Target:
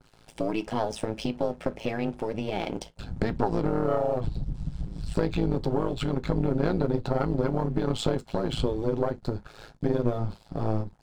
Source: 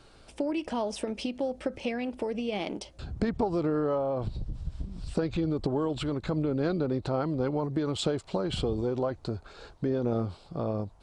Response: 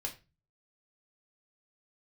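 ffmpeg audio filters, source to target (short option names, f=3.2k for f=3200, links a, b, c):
-filter_complex "[0:a]aeval=exprs='(tanh(8.91*val(0)+0.45)-tanh(0.45))/8.91':c=same,tremolo=f=110:d=0.889,aeval=exprs='sgn(val(0))*max(abs(val(0))-0.00106,0)':c=same,asplit=2[a][b];[1:a]atrim=start_sample=2205,afade=t=out:st=0.15:d=0.01,atrim=end_sample=7056,asetrate=70560,aresample=44100[c];[b][c]afir=irnorm=-1:irlink=0,volume=-2.5dB[d];[a][d]amix=inputs=2:normalize=0,adynamicequalizer=threshold=0.00251:dfrequency=1900:dqfactor=0.7:tfrequency=1900:tqfactor=0.7:attack=5:release=100:ratio=0.375:range=1.5:mode=cutabove:tftype=highshelf,volume=6.5dB"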